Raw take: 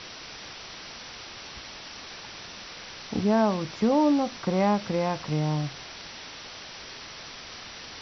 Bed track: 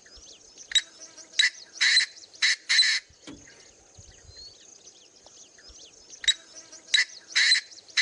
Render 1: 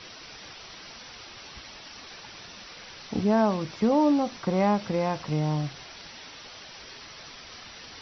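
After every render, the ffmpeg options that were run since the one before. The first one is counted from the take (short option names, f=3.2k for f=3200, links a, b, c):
-af "afftdn=nr=6:nf=-43"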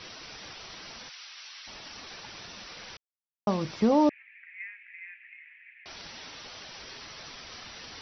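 -filter_complex "[0:a]asplit=3[a][b][c];[a]afade=t=out:st=1.08:d=0.02[d];[b]highpass=1.5k,afade=t=in:st=1.08:d=0.02,afade=t=out:st=1.66:d=0.02[e];[c]afade=t=in:st=1.66:d=0.02[f];[d][e][f]amix=inputs=3:normalize=0,asettb=1/sr,asplit=3[g][h][i];[g]atrim=end=4.094[j];[h]atrim=start=4.09:end=5.86,asetpts=PTS-STARTPTS,afade=t=in:d=0.004:c=qsin,afade=t=out:st=1.766:d=0.004:c=qsin,asuperpass=centerf=2100:order=8:qfactor=2.6[k];[i]atrim=start=5.856[l];[j][k]acrossfade=d=0.004:c1=hsin:c2=qsin[m];[m][l]acrossfade=d=0.004:c1=qsin:c2=hsin,asplit=3[n][o][p];[n]atrim=end=2.97,asetpts=PTS-STARTPTS,afade=t=out:st=2.966:d=0.004:c=hsin[q];[o]atrim=start=2.97:end=3.47,asetpts=PTS-STARTPTS,volume=0[r];[p]atrim=start=3.47,asetpts=PTS-STARTPTS,afade=t=in:d=0.004:c=hsin[s];[q][r][s]concat=n=3:v=0:a=1"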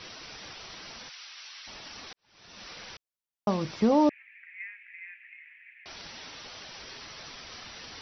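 -filter_complex "[0:a]asplit=2[a][b];[a]atrim=end=2.13,asetpts=PTS-STARTPTS,afade=t=out:st=2.126:d=0.004:c=hsin[c];[b]atrim=start=2.13,asetpts=PTS-STARTPTS,afade=t=in:d=0.53:c=qua[d];[c][d]concat=n=2:v=0:a=1"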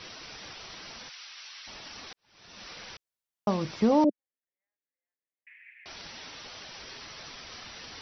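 -filter_complex "[0:a]asettb=1/sr,asplit=3[a][b][c];[a]atrim=end=4.044[d];[b]atrim=start=4.04:end=5.47,asetpts=PTS-STARTPTS,afade=t=in:d=0.004:c=qsin,afade=t=out:st=1.426:d=0.004:c=qsin,asuperpass=centerf=360:order=8:qfactor=0.92[e];[c]atrim=start=5.466[f];[d][e]acrossfade=d=0.004:c1=hsin:c2=qsin[g];[g][f]acrossfade=d=0.004:c1=qsin:c2=hsin"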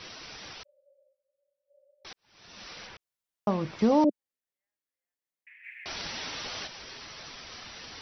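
-filter_complex "[0:a]asettb=1/sr,asplit=3[a][b][c];[a]atrim=end=0.634[d];[b]atrim=start=0.63:end=2.05,asetpts=PTS-STARTPTS,afade=t=in:d=0.004:c=qsin,afade=t=out:st=1.416:d=0.004:c=qsin,asuperpass=centerf=560:order=20:qfactor=7.8[e];[c]atrim=start=2.046[f];[d][e]acrossfade=d=0.004:c1=hsin:c2=qsin[g];[g][f]acrossfade=d=0.004:c1=qsin:c2=hsin,asettb=1/sr,asplit=3[h][i][j];[h]atrim=end=2.874[k];[i]atrim=start=2.87:end=3.79,asetpts=PTS-STARTPTS,afade=t=in:d=0.004:c=qsin,afade=t=out:st=0.916:d=0.004:c=qsin,acrossover=split=3000[l][m];[m]acompressor=threshold=-56dB:ratio=4:attack=1:release=60[n];[l][n]amix=inputs=2:normalize=0[o];[j]atrim=start=3.786[p];[k][o]acrossfade=d=0.004:c1=hsin:c2=qsin[q];[q][p]acrossfade=d=0.004:c1=qsin:c2=hsin,asplit=3[r][s][t];[r]afade=t=out:st=5.63:d=0.02[u];[s]acontrast=87,afade=t=in:st=5.63:d=0.02,afade=t=out:st=6.66:d=0.02[v];[t]afade=t=in:st=6.66:d=0.02[w];[u][v][w]amix=inputs=3:normalize=0"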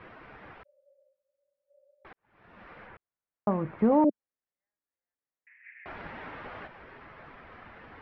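-af "lowpass=f=1.9k:w=0.5412,lowpass=f=1.9k:w=1.3066"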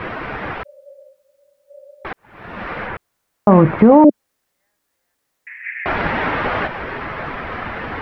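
-af "alimiter=level_in=22.5dB:limit=-1dB:release=50:level=0:latency=1"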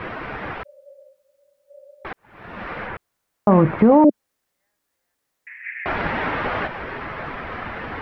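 -af "volume=-4dB"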